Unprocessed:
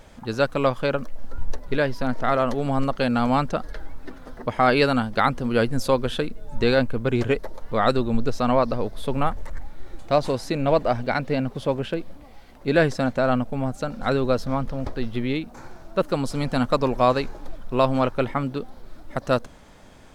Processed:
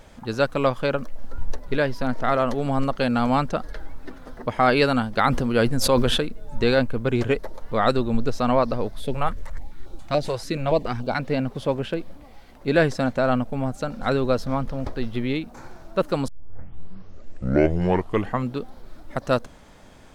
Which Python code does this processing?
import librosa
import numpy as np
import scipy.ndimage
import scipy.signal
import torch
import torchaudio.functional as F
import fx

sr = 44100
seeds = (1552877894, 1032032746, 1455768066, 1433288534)

y = fx.sustainer(x, sr, db_per_s=23.0, at=(5.27, 6.21))
y = fx.filter_held_notch(y, sr, hz=7.0, low_hz=250.0, high_hz=1900.0, at=(8.91, 11.18), fade=0.02)
y = fx.edit(y, sr, fx.tape_start(start_s=16.28, length_s=2.32), tone=tone)